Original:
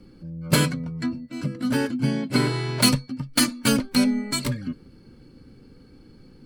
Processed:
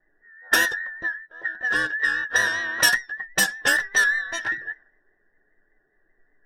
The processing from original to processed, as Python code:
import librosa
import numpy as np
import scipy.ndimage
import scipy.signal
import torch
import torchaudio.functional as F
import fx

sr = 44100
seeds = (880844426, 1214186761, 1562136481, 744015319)

y = fx.band_invert(x, sr, width_hz=2000)
y = fx.env_lowpass(y, sr, base_hz=430.0, full_db=-17.0)
y = fx.vibrato(y, sr, rate_hz=5.1, depth_cents=51.0)